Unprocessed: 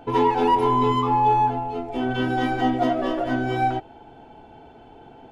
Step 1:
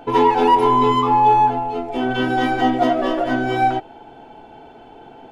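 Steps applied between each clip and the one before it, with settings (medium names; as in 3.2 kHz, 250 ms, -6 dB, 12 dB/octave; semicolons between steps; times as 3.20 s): peaking EQ 61 Hz -8.5 dB 2.9 oct; trim +5.5 dB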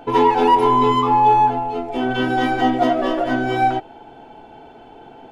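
no audible change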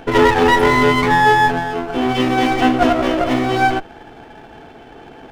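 comb filter that takes the minimum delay 0.34 ms; trim +4 dB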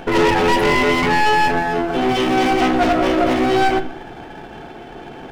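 saturation -16.5 dBFS, distortion -8 dB; reverberation RT60 0.70 s, pre-delay 5 ms, DRR 8 dB; trim +3.5 dB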